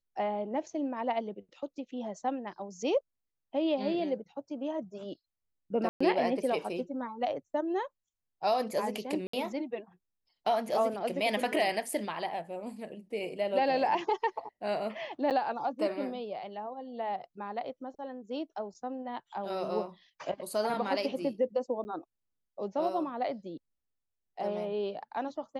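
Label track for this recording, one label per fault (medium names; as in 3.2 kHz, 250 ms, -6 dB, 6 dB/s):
5.890000	6.000000	dropout 115 ms
9.270000	9.330000	dropout 64 ms
15.300000	15.310000	dropout 7.8 ms
21.840000	21.850000	dropout 10 ms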